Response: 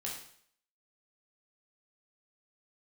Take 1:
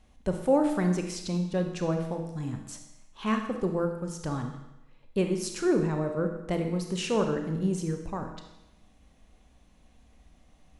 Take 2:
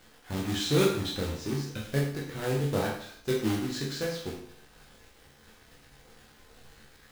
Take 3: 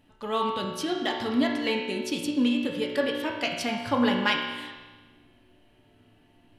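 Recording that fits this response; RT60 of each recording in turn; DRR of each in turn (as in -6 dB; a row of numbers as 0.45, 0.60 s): 2; 0.95, 0.60, 1.3 s; 4.5, -3.5, -1.5 dB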